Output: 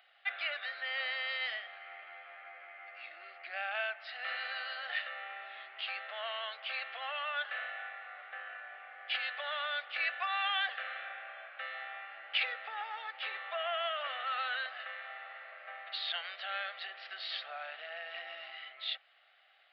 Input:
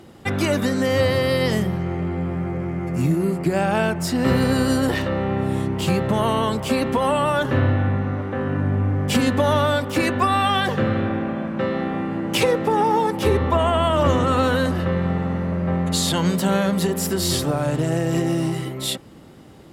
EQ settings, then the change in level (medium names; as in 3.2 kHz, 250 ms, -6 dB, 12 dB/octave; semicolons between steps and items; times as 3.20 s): Chebyshev high-pass 700 Hz, order 5; brick-wall FIR low-pass 5.6 kHz; static phaser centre 2.3 kHz, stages 4; -5.0 dB